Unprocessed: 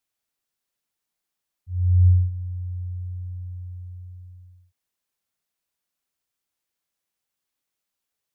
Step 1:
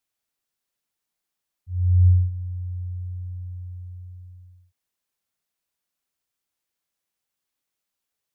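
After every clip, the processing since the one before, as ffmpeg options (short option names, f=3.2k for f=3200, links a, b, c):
-af anull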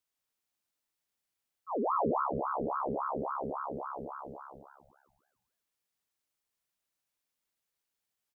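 -filter_complex "[0:a]acompressor=threshold=-26dB:ratio=6,asplit=2[a][b];[b]asplit=6[c][d][e][f][g][h];[c]adelay=158,afreqshift=69,volume=-5.5dB[i];[d]adelay=316,afreqshift=138,volume=-12.1dB[j];[e]adelay=474,afreqshift=207,volume=-18.6dB[k];[f]adelay=632,afreqshift=276,volume=-25.2dB[l];[g]adelay=790,afreqshift=345,volume=-31.7dB[m];[h]adelay=948,afreqshift=414,volume=-38.3dB[n];[i][j][k][l][m][n]amix=inputs=6:normalize=0[o];[a][o]amix=inputs=2:normalize=0,aeval=exprs='val(0)*sin(2*PI*760*n/s+760*0.6/3.6*sin(2*PI*3.6*n/s))':c=same,volume=-1.5dB"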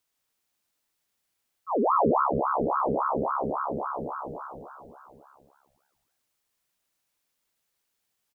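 -af "aecho=1:1:861:0.168,volume=7.5dB"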